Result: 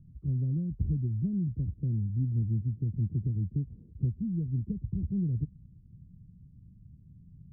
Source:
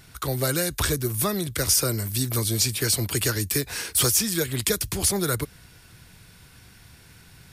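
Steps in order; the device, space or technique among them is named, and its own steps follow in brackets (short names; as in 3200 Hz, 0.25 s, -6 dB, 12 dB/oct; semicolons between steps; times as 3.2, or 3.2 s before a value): the neighbour's flat through the wall (LPF 220 Hz 24 dB/oct; bell 170 Hz +4 dB 0.7 oct); gain -1.5 dB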